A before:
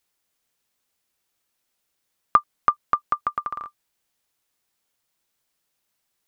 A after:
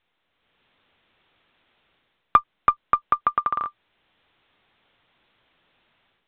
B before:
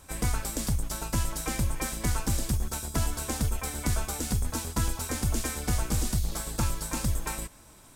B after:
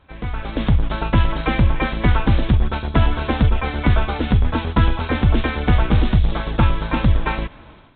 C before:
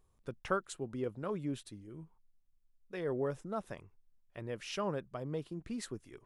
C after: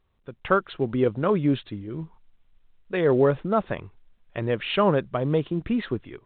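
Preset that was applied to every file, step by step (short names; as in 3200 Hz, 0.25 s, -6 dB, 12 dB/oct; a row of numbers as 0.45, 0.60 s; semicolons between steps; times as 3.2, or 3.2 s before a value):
added harmonics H 3 -33 dB, 4 -28 dB, 5 -32 dB, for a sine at -2.5 dBFS; AGC gain up to 16 dB; gain -1 dB; µ-law 64 kbps 8000 Hz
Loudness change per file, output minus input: +1.5, +11.0, +15.0 LU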